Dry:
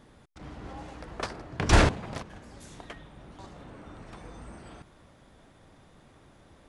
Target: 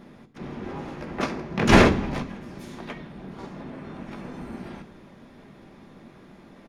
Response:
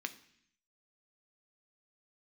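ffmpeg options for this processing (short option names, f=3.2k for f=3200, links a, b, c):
-filter_complex "[0:a]tiltshelf=f=850:g=5,asplit=4[a][b][c][d];[b]asetrate=22050,aresample=44100,atempo=2,volume=-3dB[e];[c]asetrate=52444,aresample=44100,atempo=0.840896,volume=-5dB[f];[d]asetrate=66075,aresample=44100,atempo=0.66742,volume=-11dB[g];[a][e][f][g]amix=inputs=4:normalize=0[h];[1:a]atrim=start_sample=2205[i];[h][i]afir=irnorm=-1:irlink=0,volume=6dB"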